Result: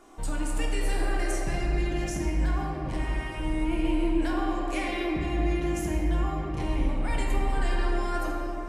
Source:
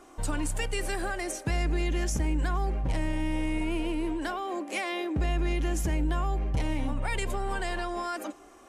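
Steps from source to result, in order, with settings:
brickwall limiter −22.5 dBFS, peak gain reduction 3.5 dB
0:02.98–0:03.40: high-pass with resonance 1,300 Hz, resonance Q 2.3
convolution reverb RT60 3.6 s, pre-delay 6 ms, DRR −3 dB
level −3 dB

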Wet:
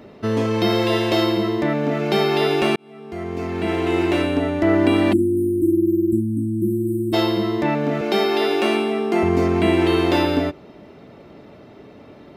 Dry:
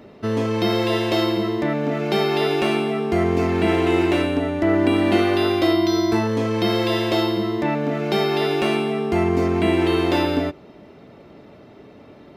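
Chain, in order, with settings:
0:02.76–0:04.43: fade in
0:05.13–0:07.14: time-frequency box erased 370–7,600 Hz
0:08.01–0:09.23: Butterworth high-pass 190 Hz 48 dB per octave
level +1.5 dB

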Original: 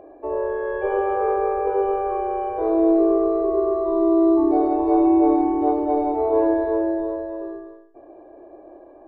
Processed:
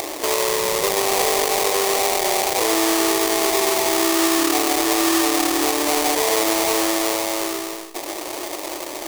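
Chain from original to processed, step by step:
upward compression, threshold −25 dBFS
sample-rate reduction 1,500 Hz, jitter 20%
downward compressor 2.5 to 1, threshold −23 dBFS, peak gain reduction 7 dB
bass and treble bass −8 dB, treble +9 dB
boost into a limiter +6.5 dB
level −1 dB

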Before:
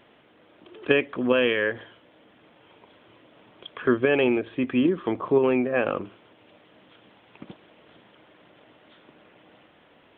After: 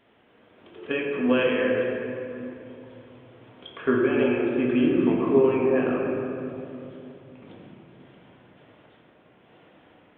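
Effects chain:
sample-and-hold tremolo
convolution reverb RT60 2.9 s, pre-delay 4 ms, DRR −4 dB
level −3 dB

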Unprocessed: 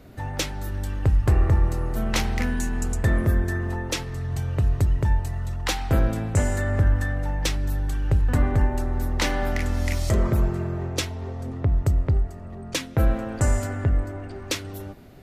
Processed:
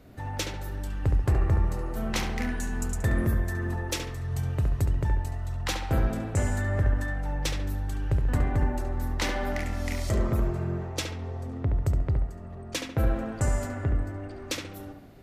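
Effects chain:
0:02.72–0:04.93: high-shelf EQ 9,300 Hz +7.5 dB
tape delay 70 ms, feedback 47%, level −3.5 dB, low-pass 2,600 Hz
level −5 dB

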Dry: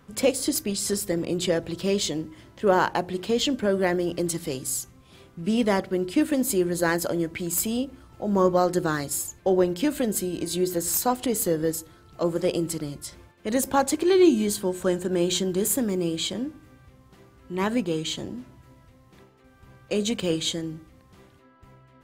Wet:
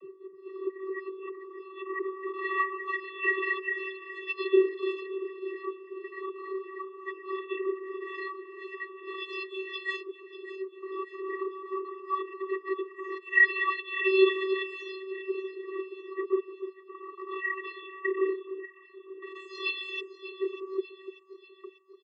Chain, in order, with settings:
every frequency bin delayed by itself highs early, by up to 694 ms
elliptic band-stop filter 150–1,600 Hz, stop band 40 dB
parametric band 750 Hz −7.5 dB 1.7 octaves
comb filter 5.4 ms, depth 46%
leveller curve on the samples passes 5
compressor whose output falls as the input rises −24 dBFS, ratio −0.5
brickwall limiter −13 dBFS, peak gain reduction 4.5 dB
auto-filter low-pass saw up 0.2 Hz 540–4,200 Hz
channel vocoder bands 32, square 382 Hz
high-frequency loss of the air 500 metres
delay that swaps between a low-pass and a high-pass 296 ms, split 1,200 Hz, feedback 70%, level −11 dB

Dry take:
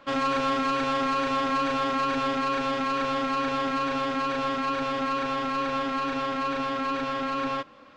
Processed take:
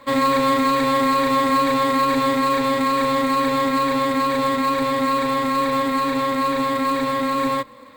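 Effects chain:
floating-point word with a short mantissa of 2 bits
EQ curve with evenly spaced ripples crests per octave 1, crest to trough 11 dB
level +4.5 dB

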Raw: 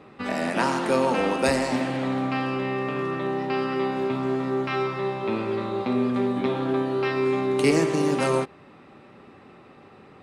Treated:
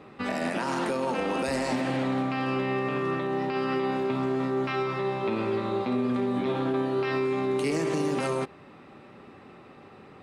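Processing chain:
brickwall limiter −19.5 dBFS, peak gain reduction 10.5 dB

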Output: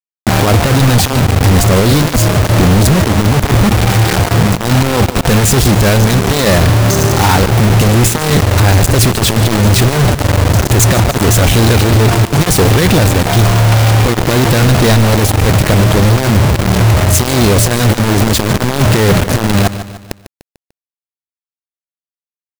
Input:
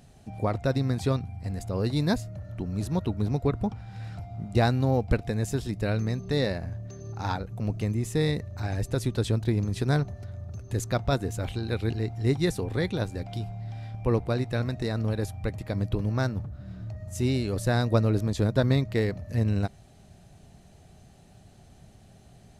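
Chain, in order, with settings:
compressor whose output falls as the input rises −29 dBFS, ratio −0.5
shaped tremolo saw up 0.99 Hz, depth 60%
log-companded quantiser 2 bits
repeating echo 148 ms, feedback 45%, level −15 dB
boost into a limiter +25.5 dB
level −3.5 dB

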